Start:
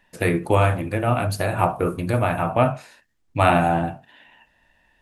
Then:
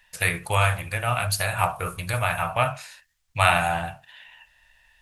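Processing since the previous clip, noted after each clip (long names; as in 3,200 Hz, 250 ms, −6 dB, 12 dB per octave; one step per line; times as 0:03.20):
guitar amp tone stack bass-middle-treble 10-0-10
level +8 dB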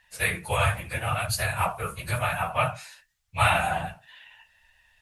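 random phases in long frames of 50 ms
level −2.5 dB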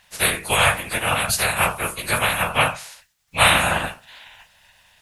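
ceiling on every frequency bin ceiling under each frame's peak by 18 dB
level +6.5 dB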